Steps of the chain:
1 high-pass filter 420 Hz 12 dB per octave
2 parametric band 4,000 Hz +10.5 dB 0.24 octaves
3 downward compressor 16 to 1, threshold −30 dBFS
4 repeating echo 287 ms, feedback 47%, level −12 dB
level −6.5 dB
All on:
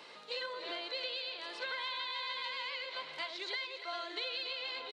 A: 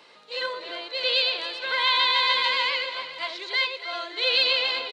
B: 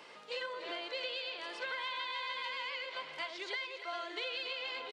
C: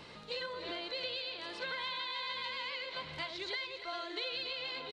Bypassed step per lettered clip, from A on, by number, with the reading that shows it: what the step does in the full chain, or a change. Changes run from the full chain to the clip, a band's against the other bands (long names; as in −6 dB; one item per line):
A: 3, average gain reduction 10.5 dB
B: 2, 4 kHz band −3.0 dB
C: 1, 250 Hz band +5.5 dB